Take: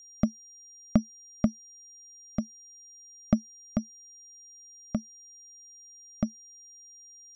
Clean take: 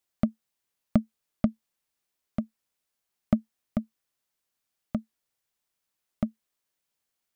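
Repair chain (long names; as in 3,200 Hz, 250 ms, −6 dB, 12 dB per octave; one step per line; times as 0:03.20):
notch filter 5,700 Hz, Q 30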